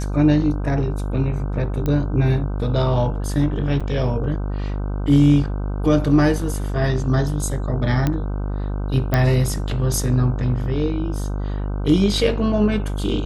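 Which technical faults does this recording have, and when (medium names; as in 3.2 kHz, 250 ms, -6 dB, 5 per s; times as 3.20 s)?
buzz 50 Hz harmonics 31 -24 dBFS
1.86 s: pop -12 dBFS
3.80–3.81 s: dropout 5.6 ms
8.07 s: pop -8 dBFS
9.14 s: pop -6 dBFS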